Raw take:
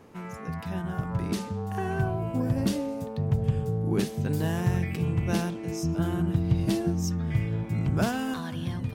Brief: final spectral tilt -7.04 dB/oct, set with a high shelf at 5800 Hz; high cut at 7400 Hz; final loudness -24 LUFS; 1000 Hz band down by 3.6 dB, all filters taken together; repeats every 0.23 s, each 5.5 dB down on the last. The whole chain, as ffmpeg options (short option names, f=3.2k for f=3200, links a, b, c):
-af "lowpass=7.4k,equalizer=f=1k:t=o:g=-5.5,highshelf=f=5.8k:g=9,aecho=1:1:230|460|690|920|1150|1380|1610:0.531|0.281|0.149|0.079|0.0419|0.0222|0.0118,volume=3.5dB"